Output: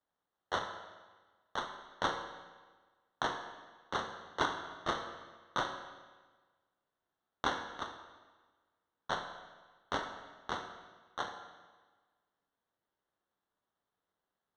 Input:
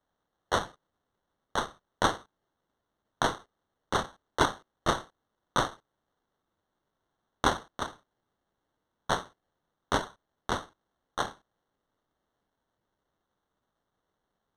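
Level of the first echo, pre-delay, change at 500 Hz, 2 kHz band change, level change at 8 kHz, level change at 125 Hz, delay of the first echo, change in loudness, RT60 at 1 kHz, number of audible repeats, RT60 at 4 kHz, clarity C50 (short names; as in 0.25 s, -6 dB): none, 11 ms, -8.0 dB, -5.0 dB, -12.0 dB, -12.0 dB, none, -7.5 dB, 1.4 s, none, 1.2 s, 7.0 dB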